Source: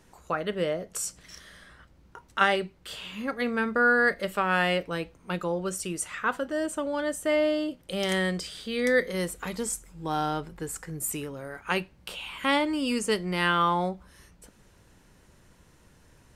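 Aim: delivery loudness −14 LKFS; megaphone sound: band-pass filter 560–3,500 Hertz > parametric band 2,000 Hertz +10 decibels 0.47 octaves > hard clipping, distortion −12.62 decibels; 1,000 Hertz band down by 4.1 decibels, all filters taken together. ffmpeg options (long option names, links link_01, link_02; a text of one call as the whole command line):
ffmpeg -i in.wav -af "highpass=560,lowpass=3500,equalizer=frequency=1000:width_type=o:gain=-6.5,equalizer=frequency=2000:width_type=o:width=0.47:gain=10,asoftclip=type=hard:threshold=-19.5dB,volume=15.5dB" out.wav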